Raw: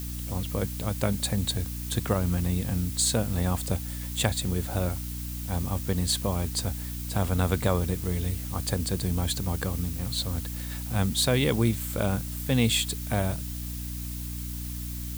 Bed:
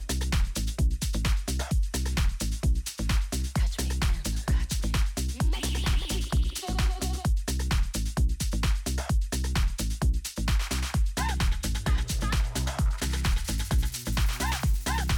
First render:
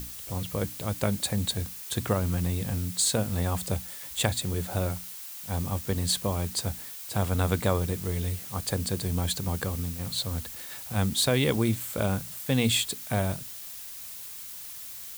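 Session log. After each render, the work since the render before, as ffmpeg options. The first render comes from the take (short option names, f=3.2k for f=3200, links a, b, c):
-af "bandreject=f=60:t=h:w=6,bandreject=f=120:t=h:w=6,bandreject=f=180:t=h:w=6,bandreject=f=240:t=h:w=6,bandreject=f=300:t=h:w=6"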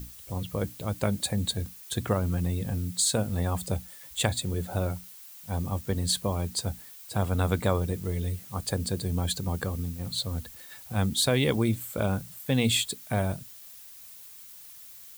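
-af "afftdn=nr=8:nf=-41"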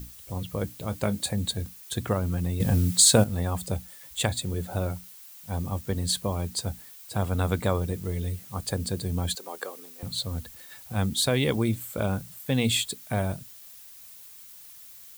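-filter_complex "[0:a]asettb=1/sr,asplit=3[a][b][c];[a]atrim=end=0.804[d];[b]atrim=start=0.8:end=1.33,asetpts=PTS-STARTPTS,afade=t=in:d=0.004:c=qsin,afade=t=out:st=0.526:d=0.004:c=qsin,asplit=2[e][f];[f]adelay=24,volume=-12.5dB[g];[e][g]amix=inputs=2:normalize=0,atrim=end_sample=23373[h];[c]atrim=start=1.326[i];[d][h]acrossfade=d=0.004:c1=hsin:c2=qsin[j];[j][i]acrossfade=d=0.004:c1=qsin:c2=hsin,asettb=1/sr,asplit=3[k][l][m];[k]atrim=end=9.354[n];[l]atrim=start=9.35:end=10.03,asetpts=PTS-STARTPTS,afade=t=in:d=0.004:c=qsin,afade=t=out:st=0.676:d=0.004:c=qsin,highpass=f=380:w=0.5412,highpass=f=380:w=1.3066[o];[m]atrim=start=10.026[p];[n][o]acrossfade=d=0.004:c1=hsin:c2=qsin[q];[q][p]acrossfade=d=0.004:c1=qsin:c2=hsin,asplit=3[r][s][t];[r]atrim=end=2.602[u];[s]atrim=start=2.598:end=3.242,asetpts=PTS-STARTPTS,volume=8dB[v];[t]atrim=start=3.238[w];[u][v]acrossfade=d=0.004:c1=hsin:c2=hsin[x];[x][w]acrossfade=d=0.004:c1=hsin:c2=hsin"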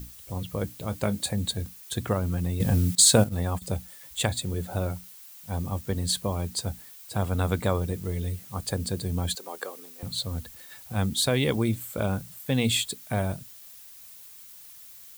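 -filter_complex "[0:a]asettb=1/sr,asplit=3[a][b][c];[a]atrim=end=2.954[d];[b]atrim=start=2.95:end=3.62,asetpts=PTS-STARTPTS,afade=t=in:d=0.004:c=qsin,afade=t=out:st=0.666:d=0.004:c=qsin,agate=range=-16dB:threshold=-32dB:ratio=16:release=100:detection=peak[e];[c]atrim=start=3.616[f];[d][e]acrossfade=d=0.004:c1=hsin:c2=qsin[g];[g][f]acrossfade=d=0.004:c1=qsin:c2=hsin"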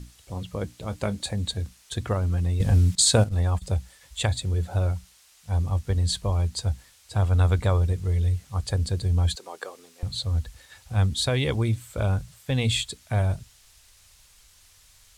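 -af "lowpass=7.8k,asubboost=boost=8:cutoff=70"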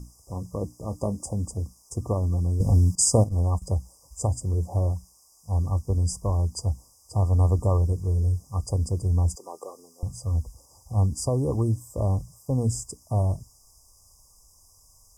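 -af "afftfilt=real='re*(1-between(b*sr/4096,1200,4800))':imag='im*(1-between(b*sr/4096,1200,4800))':win_size=4096:overlap=0.75,adynamicequalizer=threshold=0.00562:dfrequency=300:dqfactor=4.2:tfrequency=300:tqfactor=4.2:attack=5:release=100:ratio=0.375:range=2:mode=boostabove:tftype=bell"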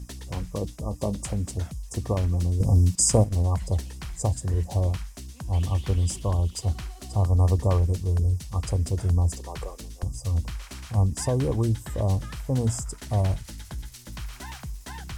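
-filter_complex "[1:a]volume=-10.5dB[a];[0:a][a]amix=inputs=2:normalize=0"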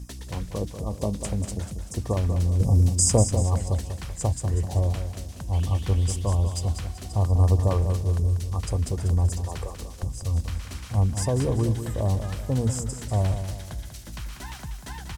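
-af "aecho=1:1:192|384|576|768|960:0.355|0.153|0.0656|0.0282|0.0121"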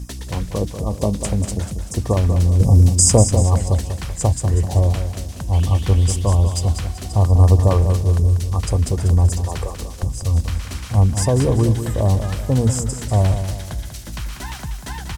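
-af "volume=7.5dB,alimiter=limit=-1dB:level=0:latency=1"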